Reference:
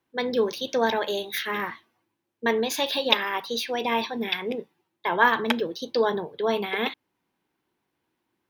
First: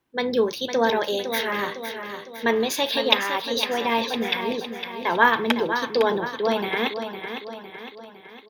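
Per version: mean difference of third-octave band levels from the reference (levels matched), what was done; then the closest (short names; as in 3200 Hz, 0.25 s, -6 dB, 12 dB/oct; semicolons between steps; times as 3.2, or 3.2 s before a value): 4.5 dB: low shelf 70 Hz +8 dB; on a send: feedback echo 0.507 s, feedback 51%, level -8.5 dB; on the sum: gain +2 dB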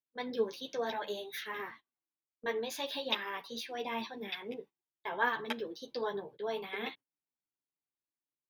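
1.5 dB: gate -40 dBFS, range -17 dB; chorus voices 6, 0.58 Hz, delay 11 ms, depth 4.2 ms; gain -9 dB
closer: second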